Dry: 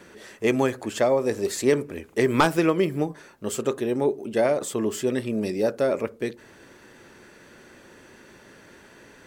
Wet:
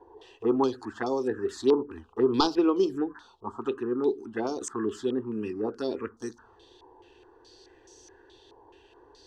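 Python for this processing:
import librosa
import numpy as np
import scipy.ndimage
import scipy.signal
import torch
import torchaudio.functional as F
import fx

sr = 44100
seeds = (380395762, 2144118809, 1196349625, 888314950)

y = fx.env_phaser(x, sr, low_hz=210.0, high_hz=1800.0, full_db=-17.0)
y = fx.fixed_phaser(y, sr, hz=590.0, stages=6)
y = fx.filter_held_lowpass(y, sr, hz=4.7, low_hz=960.0, high_hz=6000.0)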